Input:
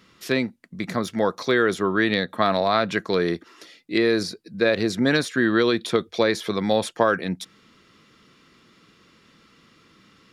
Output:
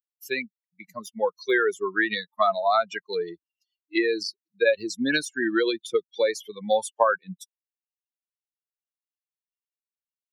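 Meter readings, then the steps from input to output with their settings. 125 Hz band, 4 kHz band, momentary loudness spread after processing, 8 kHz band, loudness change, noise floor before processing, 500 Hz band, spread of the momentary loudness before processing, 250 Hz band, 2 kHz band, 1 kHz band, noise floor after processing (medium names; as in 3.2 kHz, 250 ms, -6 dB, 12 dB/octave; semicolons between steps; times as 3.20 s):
-17.0 dB, -4.5 dB, 12 LU, -1.5 dB, -2.5 dB, -58 dBFS, -2.5 dB, 9 LU, -7.5 dB, -2.0 dB, -1.0 dB, under -85 dBFS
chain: expander on every frequency bin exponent 3; high-pass 370 Hz 12 dB/octave; dynamic bell 3.2 kHz, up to -4 dB, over -47 dBFS, Q 2.6; trim +5.5 dB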